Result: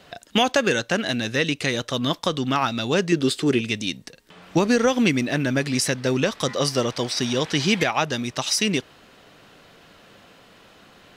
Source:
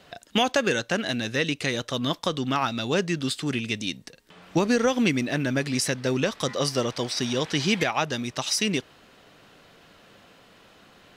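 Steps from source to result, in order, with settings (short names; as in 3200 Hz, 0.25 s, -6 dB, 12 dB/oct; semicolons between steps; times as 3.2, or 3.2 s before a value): 3.12–3.61 bell 400 Hz +11 dB 0.77 oct; gain +3 dB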